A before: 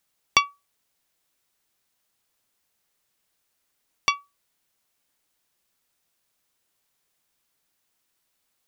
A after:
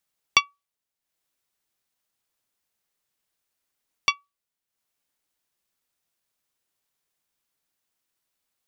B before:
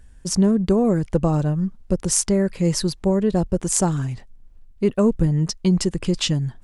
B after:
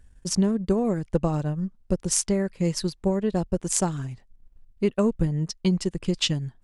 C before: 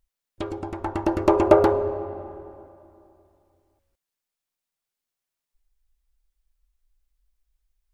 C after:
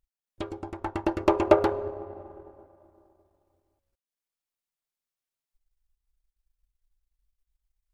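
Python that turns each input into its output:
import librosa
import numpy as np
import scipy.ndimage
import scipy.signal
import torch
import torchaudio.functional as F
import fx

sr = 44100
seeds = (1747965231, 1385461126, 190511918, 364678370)

y = fx.transient(x, sr, attack_db=3, sustain_db=-7)
y = fx.dynamic_eq(y, sr, hz=3000.0, q=0.72, threshold_db=-37.0, ratio=4.0, max_db=5)
y = y * librosa.db_to_amplitude(-6.0)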